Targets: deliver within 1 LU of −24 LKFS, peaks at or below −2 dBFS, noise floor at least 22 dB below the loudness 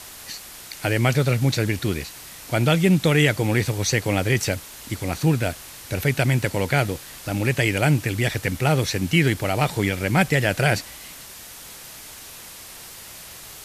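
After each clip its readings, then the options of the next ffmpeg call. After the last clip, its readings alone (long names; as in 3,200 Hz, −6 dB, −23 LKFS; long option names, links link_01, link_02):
background noise floor −41 dBFS; target noise floor −44 dBFS; integrated loudness −22.0 LKFS; sample peak −5.0 dBFS; target loudness −24.0 LKFS
→ -af "afftdn=noise_reduction=6:noise_floor=-41"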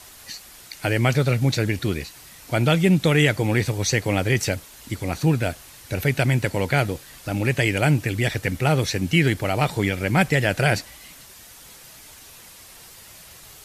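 background noise floor −46 dBFS; integrated loudness −22.0 LKFS; sample peak −5.0 dBFS; target loudness −24.0 LKFS
→ -af "volume=-2dB"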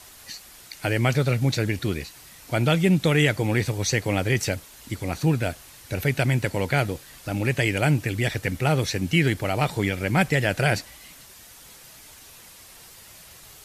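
integrated loudness −24.0 LKFS; sample peak −7.0 dBFS; background noise floor −48 dBFS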